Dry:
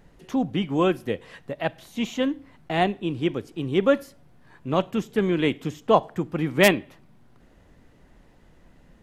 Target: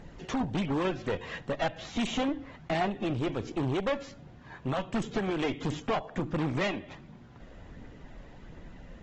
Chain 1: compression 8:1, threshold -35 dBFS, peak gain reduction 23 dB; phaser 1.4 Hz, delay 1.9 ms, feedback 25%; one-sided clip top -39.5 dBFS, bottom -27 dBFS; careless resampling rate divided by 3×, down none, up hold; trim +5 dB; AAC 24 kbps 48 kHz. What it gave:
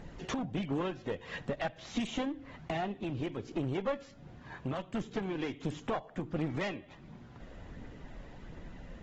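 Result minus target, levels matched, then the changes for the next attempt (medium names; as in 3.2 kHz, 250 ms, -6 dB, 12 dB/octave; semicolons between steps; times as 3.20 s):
compression: peak gain reduction +8.5 dB
change: compression 8:1, threshold -25.5 dBFS, peak gain reduction 15 dB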